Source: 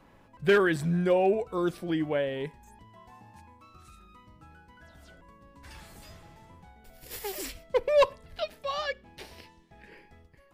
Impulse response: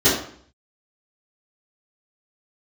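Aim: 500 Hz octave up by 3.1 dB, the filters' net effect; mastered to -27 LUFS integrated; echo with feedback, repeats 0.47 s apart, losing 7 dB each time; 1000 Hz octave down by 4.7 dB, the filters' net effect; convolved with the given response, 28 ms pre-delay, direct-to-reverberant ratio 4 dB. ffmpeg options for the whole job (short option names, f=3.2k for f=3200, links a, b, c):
-filter_complex "[0:a]equalizer=f=500:t=o:g=6,equalizer=f=1k:t=o:g=-8.5,aecho=1:1:470|940|1410|1880|2350:0.447|0.201|0.0905|0.0407|0.0183,asplit=2[a][b];[1:a]atrim=start_sample=2205,adelay=28[c];[b][c]afir=irnorm=-1:irlink=0,volume=-25dB[d];[a][d]amix=inputs=2:normalize=0,volume=-5.5dB"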